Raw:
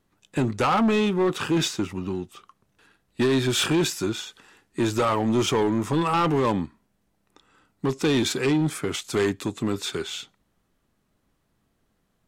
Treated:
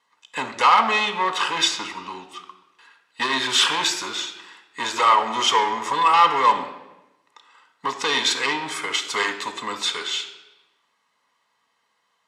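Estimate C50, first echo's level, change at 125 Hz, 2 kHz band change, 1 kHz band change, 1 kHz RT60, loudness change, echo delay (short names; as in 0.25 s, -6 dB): 10.0 dB, none, -19.0 dB, +8.0 dB, +9.5 dB, 0.95 s, +3.5 dB, none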